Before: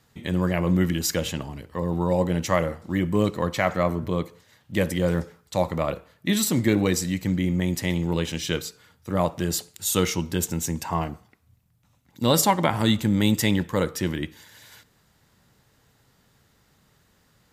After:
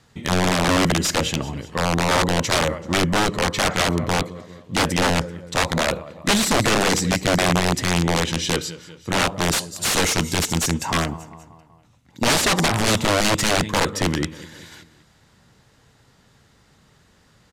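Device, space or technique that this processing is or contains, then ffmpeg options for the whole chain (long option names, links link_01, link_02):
overflowing digital effects unit: -filter_complex "[0:a]asettb=1/sr,asplit=3[link_01][link_02][link_03];[link_01]atrim=end=9.414[link_04];[link_02]atrim=start=9.41:end=10.74,asetpts=PTS-STARTPTS,afade=type=in:duration=0.004:curve=qsin,afade=type=out:start_time=1.326:duration=0.004:curve=qsin,aemphasis=mode=production:type=cd[link_05];[link_03]atrim=start=10.736[link_06];[link_04][link_05]acrossfade=duration=0.004:curve1=hsin:curve2=qsin[link_07];[link_07][link_06]acrossfade=duration=0.004:curve1=qsin:curve2=hsin,aecho=1:1:193|386|579|772:0.119|0.063|0.0334|0.0177,aeval=exprs='(mod(7.5*val(0)+1,2)-1)/7.5':channel_layout=same,lowpass=8700,volume=6dB"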